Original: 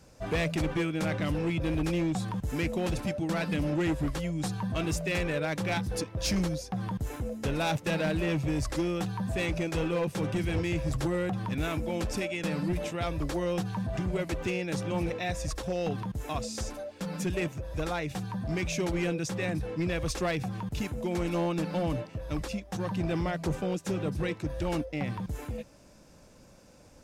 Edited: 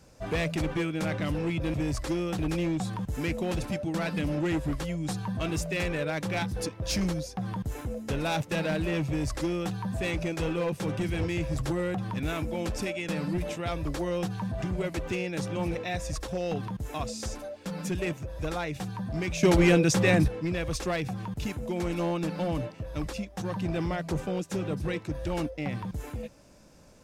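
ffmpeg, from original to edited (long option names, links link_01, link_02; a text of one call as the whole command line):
ffmpeg -i in.wav -filter_complex "[0:a]asplit=5[link_01][link_02][link_03][link_04][link_05];[link_01]atrim=end=1.742[link_06];[link_02]atrim=start=8.418:end=9.072[link_07];[link_03]atrim=start=1.738:end=18.782[link_08];[link_04]atrim=start=18.778:end=19.632,asetpts=PTS-STARTPTS,volume=9.5dB[link_09];[link_05]atrim=start=19.628[link_10];[link_06][link_07]acrossfade=duration=0.004:curve1=hsin:curve2=hsin[link_11];[link_11][link_08]acrossfade=duration=0.004:curve1=hsin:curve2=hsin[link_12];[link_12][link_09]acrossfade=duration=0.004:curve1=hsin:curve2=hsin[link_13];[link_13][link_10]acrossfade=duration=0.004:curve1=hsin:curve2=hsin" out.wav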